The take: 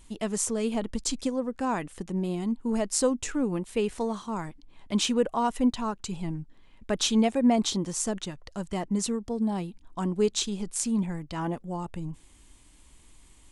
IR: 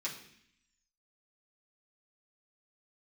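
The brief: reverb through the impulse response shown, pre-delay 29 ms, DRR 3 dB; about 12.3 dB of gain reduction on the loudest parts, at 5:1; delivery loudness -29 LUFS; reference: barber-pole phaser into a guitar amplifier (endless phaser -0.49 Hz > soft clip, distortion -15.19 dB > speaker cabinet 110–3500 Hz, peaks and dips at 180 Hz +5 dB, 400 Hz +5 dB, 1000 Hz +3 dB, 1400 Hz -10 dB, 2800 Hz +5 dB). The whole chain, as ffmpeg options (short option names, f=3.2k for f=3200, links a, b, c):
-filter_complex "[0:a]acompressor=threshold=-32dB:ratio=5,asplit=2[a][b];[1:a]atrim=start_sample=2205,adelay=29[c];[b][c]afir=irnorm=-1:irlink=0,volume=-5dB[d];[a][d]amix=inputs=2:normalize=0,asplit=2[e][f];[f]afreqshift=-0.49[g];[e][g]amix=inputs=2:normalize=1,asoftclip=threshold=-31dB,highpass=110,equalizer=f=180:t=q:w=4:g=5,equalizer=f=400:t=q:w=4:g=5,equalizer=f=1k:t=q:w=4:g=3,equalizer=f=1.4k:t=q:w=4:g=-10,equalizer=f=2.8k:t=q:w=4:g=5,lowpass=f=3.5k:w=0.5412,lowpass=f=3.5k:w=1.3066,volume=9.5dB"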